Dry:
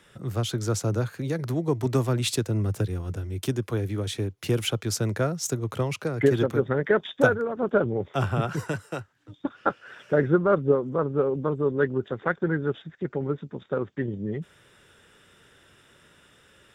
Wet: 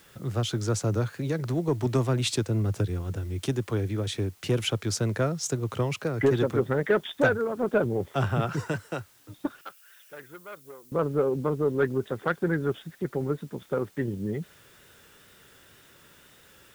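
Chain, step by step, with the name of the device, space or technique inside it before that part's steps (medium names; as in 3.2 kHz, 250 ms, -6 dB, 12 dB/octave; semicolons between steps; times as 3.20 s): compact cassette (saturation -13 dBFS, distortion -18 dB; low-pass 9 kHz; wow and flutter; white noise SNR 32 dB); 9.61–10.92 s: pre-emphasis filter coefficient 0.97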